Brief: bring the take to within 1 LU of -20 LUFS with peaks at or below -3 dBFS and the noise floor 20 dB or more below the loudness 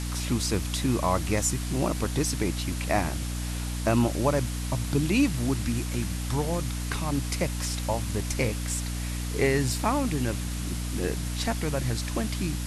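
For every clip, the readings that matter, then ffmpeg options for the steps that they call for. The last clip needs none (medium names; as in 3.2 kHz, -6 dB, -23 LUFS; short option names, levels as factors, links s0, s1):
hum 60 Hz; highest harmonic 300 Hz; hum level -29 dBFS; noise floor -32 dBFS; noise floor target -48 dBFS; loudness -28.0 LUFS; peak level -10.5 dBFS; loudness target -20.0 LUFS
-> -af "bandreject=f=60:t=h:w=4,bandreject=f=120:t=h:w=4,bandreject=f=180:t=h:w=4,bandreject=f=240:t=h:w=4,bandreject=f=300:t=h:w=4"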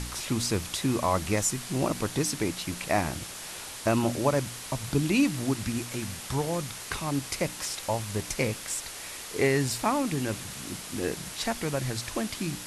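hum not found; noise floor -41 dBFS; noise floor target -50 dBFS
-> -af "afftdn=nr=9:nf=-41"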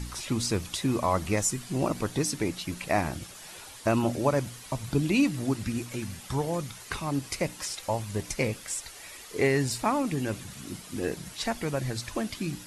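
noise floor -46 dBFS; noise floor target -50 dBFS
-> -af "afftdn=nr=6:nf=-46"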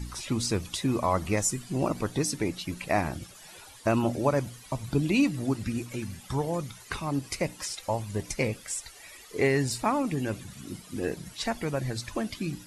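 noise floor -50 dBFS; loudness -30.0 LUFS; peak level -12.0 dBFS; loudness target -20.0 LUFS
-> -af "volume=3.16,alimiter=limit=0.708:level=0:latency=1"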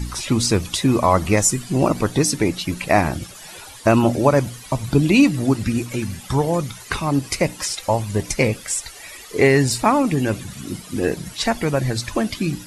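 loudness -20.0 LUFS; peak level -3.0 dBFS; noise floor -40 dBFS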